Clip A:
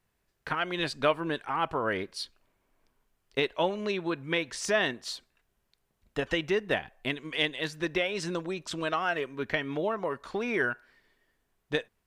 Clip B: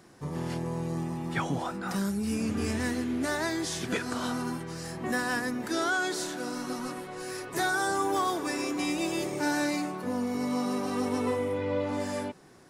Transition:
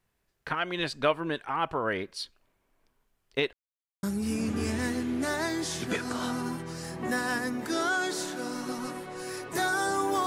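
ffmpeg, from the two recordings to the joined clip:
-filter_complex "[0:a]apad=whole_dur=10.26,atrim=end=10.26,asplit=2[a][b];[a]atrim=end=3.53,asetpts=PTS-STARTPTS,afade=t=out:st=3.526:d=0.004:c=hsin[c];[b]atrim=start=3.53:end=4.03,asetpts=PTS-STARTPTS,volume=0[d];[1:a]atrim=start=2.04:end=8.27,asetpts=PTS-STARTPTS,afade=t=in:d=0.004:c=hsin[e];[c][d][e]concat=n=3:v=0:a=1"

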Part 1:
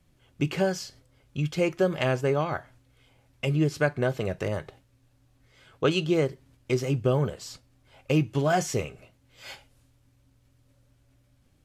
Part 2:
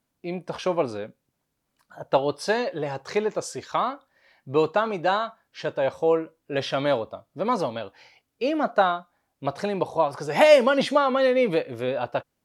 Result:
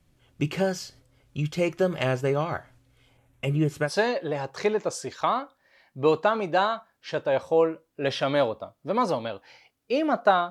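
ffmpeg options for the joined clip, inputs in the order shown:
-filter_complex "[0:a]asettb=1/sr,asplit=3[a][b][c];[a]atrim=end=3.174[d];[b]atrim=start=3.17:end=3.93,asetpts=PTS-STARTPTS,afade=t=in:d=0.004:c=qsin,afade=t=out:st=0.756:d=0.004:c=qsin,equalizer=f=4.8k:t=o:w=0.64:g=-11[e];[c]atrim=start=3.926[f];[d][e]acrossfade=d=0.004:c1=hsin:c2=qsin[g];[g][f]acrossfade=d=0.004:c1=qsin:c2=hsin,apad=whole_dur=10.5,atrim=end=10.5,atrim=end=3.93,asetpts=PTS-STARTPTS[h];[1:a]atrim=start=2.32:end=9.01,asetpts=PTS-STARTPTS[i];[h][i]acrossfade=d=0.12:c1=tri:c2=tri"

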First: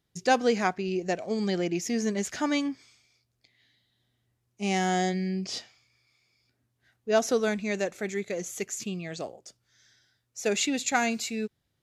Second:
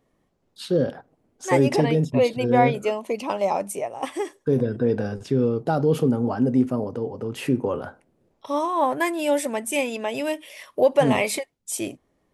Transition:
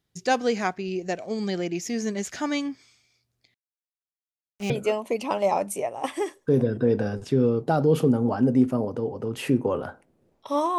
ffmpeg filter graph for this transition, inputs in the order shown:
-filter_complex "[0:a]asettb=1/sr,asplit=3[a][b][c];[a]atrim=end=3.544[d];[b]atrim=start=3.54:end=4.7,asetpts=PTS-STARTPTS,afade=t=in:d=0.004:c=qsin,afade=t=out:st=1.156:d=0.004:c=qsin,acrusher=bits=6:mix=0:aa=0.5[e];[c]atrim=start=4.696[f];[d][e]acrossfade=d=0.004:c1=hsin:c2=qsin[g];[g][f]acrossfade=d=0.004:c1=qsin:c2=hsin,apad=whole_dur=10.78,atrim=end=10.78,atrim=end=4.702[h];[1:a]atrim=start=2.688:end=8.77[i];[h][i]acrossfade=d=0.004:c1=hsin:c2=hsin"

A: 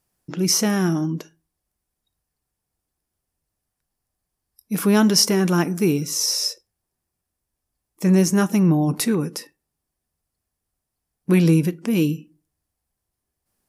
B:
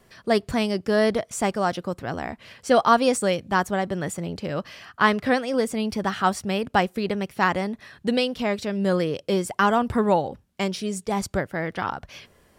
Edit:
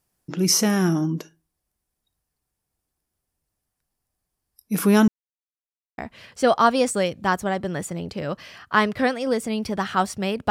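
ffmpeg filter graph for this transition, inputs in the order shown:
-filter_complex "[0:a]apad=whole_dur=10.5,atrim=end=10.5,asplit=2[a][b];[a]atrim=end=5.08,asetpts=PTS-STARTPTS,afade=t=out:st=5.076:d=0.004:c=hsin[c];[b]atrim=start=5.08:end=5.98,asetpts=PTS-STARTPTS,volume=0[d];[1:a]atrim=start=2.25:end=6.77,asetpts=PTS-STARTPTS,afade=t=in:d=0.004:c=hsin[e];[c][d][e]concat=n=3:v=0:a=1"

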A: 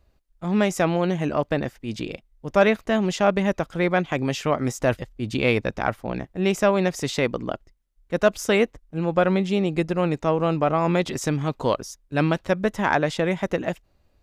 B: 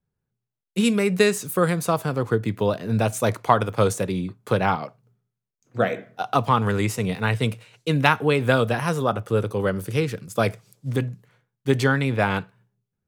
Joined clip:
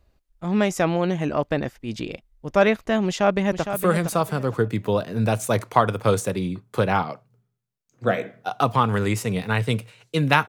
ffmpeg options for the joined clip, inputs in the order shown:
-filter_complex "[0:a]apad=whole_dur=10.48,atrim=end=10.48,atrim=end=3.732[a];[1:a]atrim=start=1.458:end=8.21[b];[a][b]acrossfade=d=0.004:c1=hsin:c2=hsin,asplit=2[c][d];[d]afade=t=in:st=3.06:d=0.01,afade=t=out:st=3.73:d=0.01,aecho=0:1:460|920|1380:0.375837|0.0939594|0.0234898[e];[c][e]amix=inputs=2:normalize=0"

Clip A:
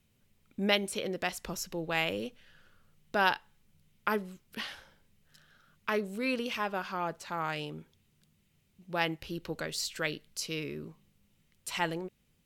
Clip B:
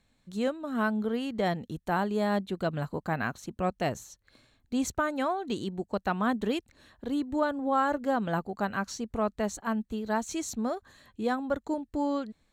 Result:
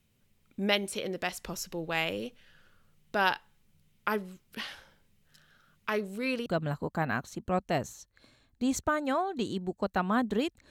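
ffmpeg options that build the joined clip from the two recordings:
-filter_complex "[0:a]apad=whole_dur=10.7,atrim=end=10.7,atrim=end=6.462[a];[1:a]atrim=start=2.568:end=6.81[b];[a][b]acrossfade=d=0.004:c1=hsin:c2=hsin"

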